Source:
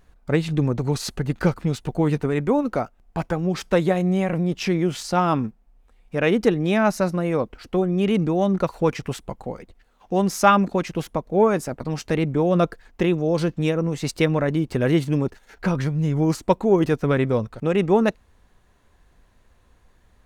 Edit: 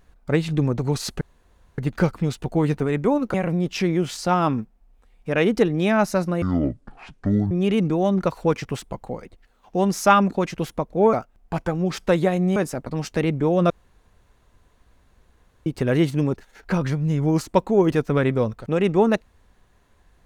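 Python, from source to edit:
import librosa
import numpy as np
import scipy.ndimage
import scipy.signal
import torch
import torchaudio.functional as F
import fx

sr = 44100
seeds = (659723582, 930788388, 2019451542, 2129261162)

y = fx.edit(x, sr, fx.insert_room_tone(at_s=1.21, length_s=0.57),
    fx.move(start_s=2.77, length_s=1.43, to_s=11.5),
    fx.speed_span(start_s=7.28, length_s=0.6, speed=0.55),
    fx.room_tone_fill(start_s=12.64, length_s=1.96), tone=tone)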